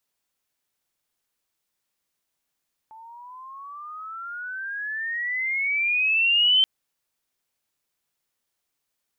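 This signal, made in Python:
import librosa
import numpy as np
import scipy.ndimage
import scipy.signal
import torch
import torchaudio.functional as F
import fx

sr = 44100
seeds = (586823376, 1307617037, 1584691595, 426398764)

y = fx.riser_tone(sr, length_s=3.73, level_db=-14.5, wave='sine', hz=873.0, rise_st=22.0, swell_db=27.5)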